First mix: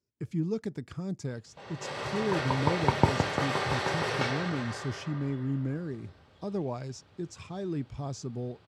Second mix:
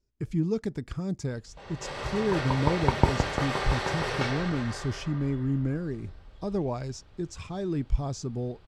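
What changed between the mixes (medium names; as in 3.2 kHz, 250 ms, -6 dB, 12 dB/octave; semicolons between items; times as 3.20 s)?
speech +3.5 dB; master: remove high-pass 90 Hz 24 dB/octave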